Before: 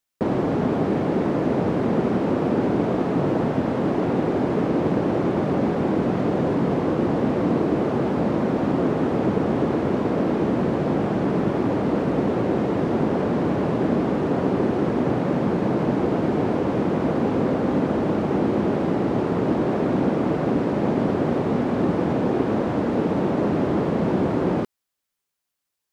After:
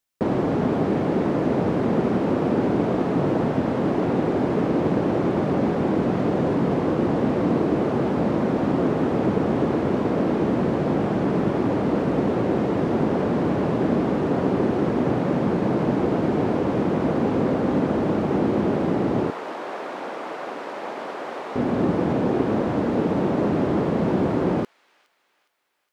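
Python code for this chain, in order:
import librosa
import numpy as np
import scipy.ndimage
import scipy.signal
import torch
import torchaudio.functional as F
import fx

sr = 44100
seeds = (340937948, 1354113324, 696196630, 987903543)

y = fx.highpass(x, sr, hz=780.0, slope=12, at=(19.3, 21.56))
y = fx.echo_wet_highpass(y, sr, ms=413, feedback_pct=46, hz=2400.0, wet_db=-17.5)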